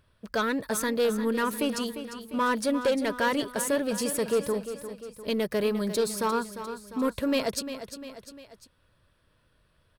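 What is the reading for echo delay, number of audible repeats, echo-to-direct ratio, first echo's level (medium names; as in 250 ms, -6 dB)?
350 ms, 3, -9.5 dB, -11.0 dB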